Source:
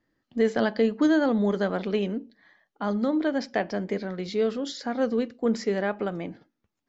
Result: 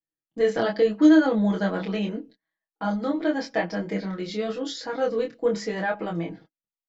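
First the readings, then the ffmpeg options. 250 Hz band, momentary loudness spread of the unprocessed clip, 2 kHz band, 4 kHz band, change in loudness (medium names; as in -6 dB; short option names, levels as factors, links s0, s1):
+2.5 dB, 10 LU, +2.0 dB, +2.0 dB, +2.0 dB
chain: -af "aecho=1:1:6.2:0.93,agate=range=0.0398:threshold=0.00562:ratio=16:detection=peak,flanger=delay=22.5:depth=3:speed=0.85,volume=1.26"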